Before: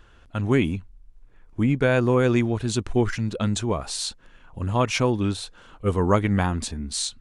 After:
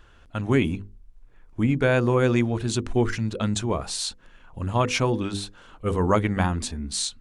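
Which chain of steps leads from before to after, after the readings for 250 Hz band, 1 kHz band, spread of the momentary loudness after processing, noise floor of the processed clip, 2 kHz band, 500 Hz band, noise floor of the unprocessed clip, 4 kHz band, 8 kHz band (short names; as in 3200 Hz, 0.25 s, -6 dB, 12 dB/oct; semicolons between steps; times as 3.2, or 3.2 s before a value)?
-1.0 dB, 0.0 dB, 12 LU, -53 dBFS, 0.0 dB, -1.0 dB, -53 dBFS, 0.0 dB, 0.0 dB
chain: notches 50/100/150/200/250/300/350/400/450/500 Hz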